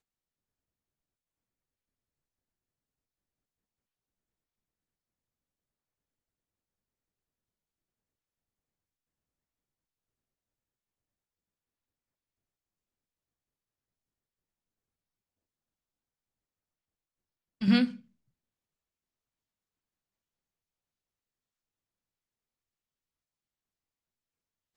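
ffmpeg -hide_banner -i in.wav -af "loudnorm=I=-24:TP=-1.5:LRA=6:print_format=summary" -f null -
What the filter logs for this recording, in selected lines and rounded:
Input Integrated:    -27.1 LUFS
Input True Peak:     -12.3 dBTP
Input LRA:             0.0 LU
Input Threshold:     -38.3 LUFS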